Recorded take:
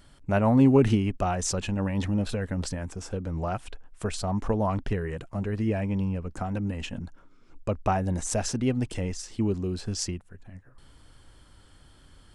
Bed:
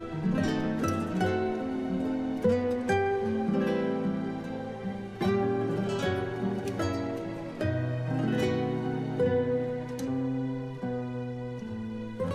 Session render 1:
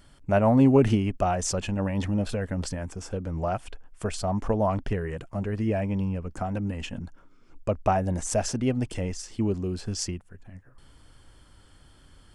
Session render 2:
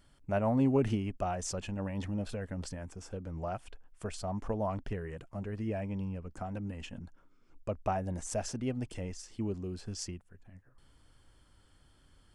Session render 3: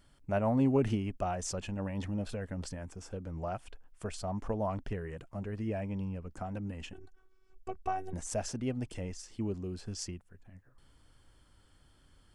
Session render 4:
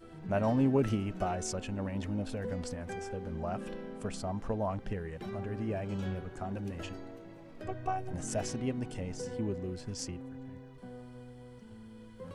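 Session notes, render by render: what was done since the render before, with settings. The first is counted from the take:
band-stop 3.9 kHz, Q 13; dynamic bell 630 Hz, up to +5 dB, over -41 dBFS, Q 2.9
trim -9 dB
6.93–8.13 s: robot voice 378 Hz
add bed -14.5 dB

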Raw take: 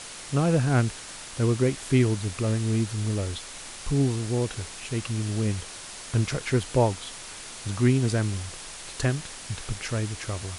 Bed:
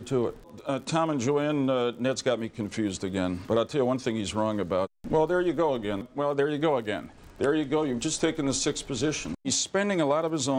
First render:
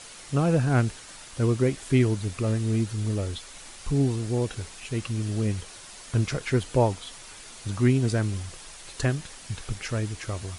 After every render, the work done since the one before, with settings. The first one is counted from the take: noise reduction 6 dB, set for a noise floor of -41 dBFS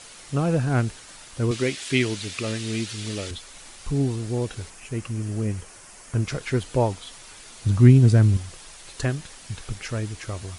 1.51–3.31 s: frequency weighting D; 4.70–6.27 s: peaking EQ 3.8 kHz -9.5 dB 0.68 oct; 7.62–8.37 s: peaking EQ 98 Hz +11 dB 2.8 oct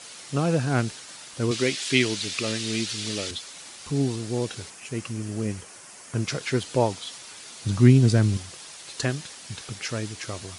dynamic bell 4.8 kHz, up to +6 dB, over -49 dBFS, Q 0.83; high-pass 130 Hz 12 dB/octave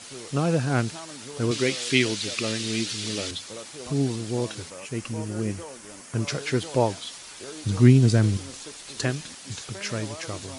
add bed -16 dB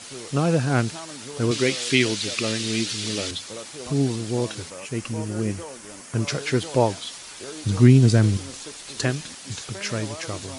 trim +2.5 dB; peak limiter -3 dBFS, peak gain reduction 2 dB

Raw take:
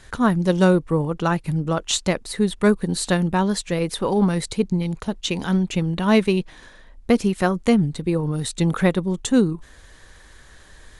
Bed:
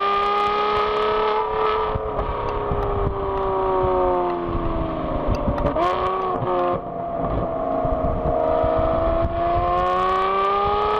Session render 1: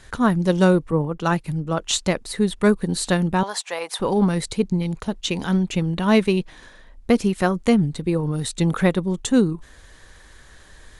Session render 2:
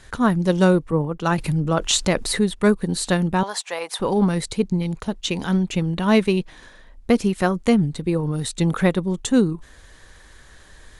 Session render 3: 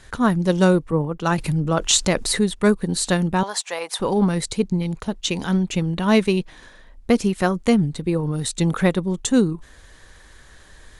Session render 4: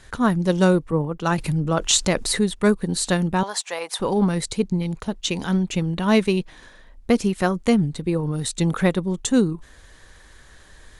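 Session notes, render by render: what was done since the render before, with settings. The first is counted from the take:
0.91–1.84 s: three bands expanded up and down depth 70%; 3.43–4.00 s: resonant high-pass 820 Hz, resonance Q 2.7
1.38–2.44 s: level flattener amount 50%
dynamic bell 6.8 kHz, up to +4 dB, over -39 dBFS, Q 0.99
trim -1 dB

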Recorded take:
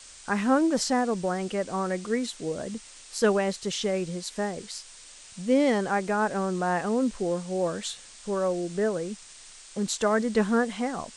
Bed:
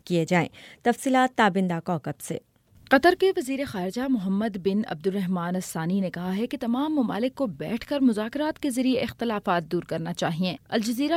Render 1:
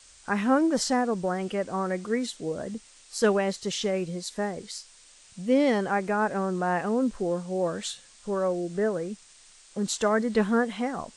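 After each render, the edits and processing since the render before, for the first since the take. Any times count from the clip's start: noise print and reduce 6 dB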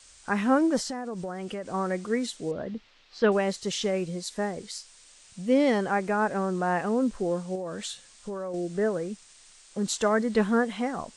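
0.79–1.74 s: compression, threshold -30 dBFS; 2.51–3.32 s: low-pass 4 kHz 24 dB/octave; 7.55–8.54 s: compression 12:1, threshold -30 dBFS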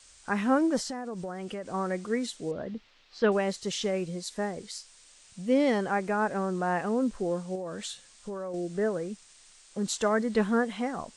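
trim -2 dB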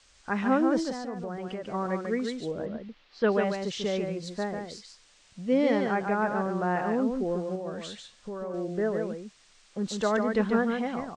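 distance through air 99 m; on a send: delay 144 ms -5 dB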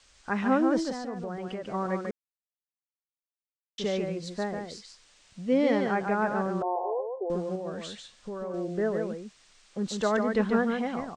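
2.11–3.78 s: mute; 6.62–7.30 s: brick-wall FIR band-pass 350–1100 Hz

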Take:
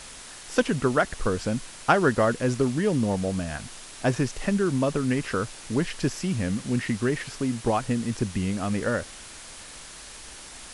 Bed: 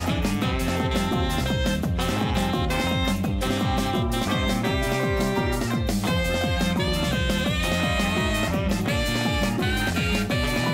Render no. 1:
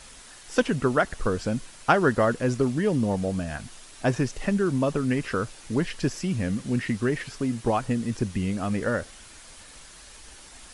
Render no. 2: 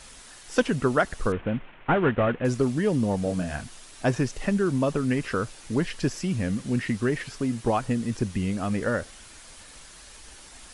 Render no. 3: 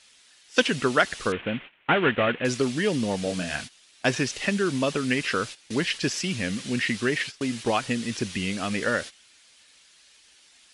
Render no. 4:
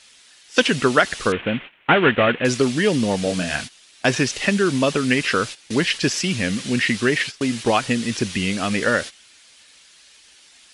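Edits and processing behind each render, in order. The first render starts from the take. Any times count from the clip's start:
noise reduction 6 dB, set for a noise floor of -43 dBFS
1.32–2.45 s: CVSD coder 16 kbps; 3.23–3.64 s: doubling 28 ms -5.5 dB
gate -36 dBFS, range -16 dB; frequency weighting D
trim +6 dB; peak limiter -2 dBFS, peak gain reduction 3 dB

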